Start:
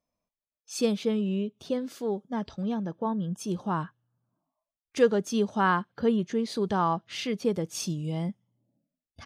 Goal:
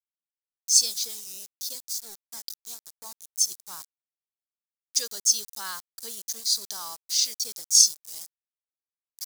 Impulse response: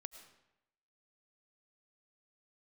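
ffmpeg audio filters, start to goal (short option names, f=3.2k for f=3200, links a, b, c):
-af "bandpass=f=5k:t=q:w=1.3:csg=0,aeval=exprs='val(0)*gte(abs(val(0)),0.00299)':c=same,aexciter=amount=11:drive=5.7:freq=4.4k,volume=1dB"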